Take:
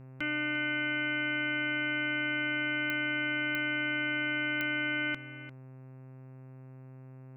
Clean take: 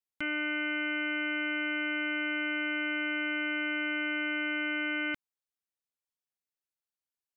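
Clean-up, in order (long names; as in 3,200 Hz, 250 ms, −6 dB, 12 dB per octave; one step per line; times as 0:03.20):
click removal
hum removal 130.6 Hz, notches 21
echo removal 348 ms −14.5 dB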